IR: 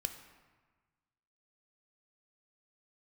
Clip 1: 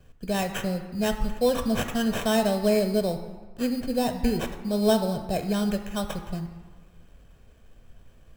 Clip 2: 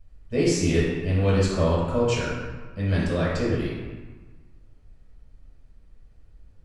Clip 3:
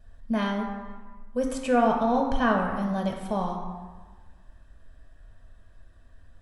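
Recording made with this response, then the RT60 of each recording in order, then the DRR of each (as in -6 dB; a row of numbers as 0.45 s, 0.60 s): 1; 1.4 s, 1.4 s, 1.4 s; 6.5 dB, -7.5 dB, 1.0 dB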